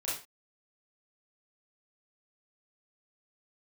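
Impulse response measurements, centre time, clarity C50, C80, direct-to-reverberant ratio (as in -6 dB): 46 ms, 3.0 dB, 10.0 dB, -8.5 dB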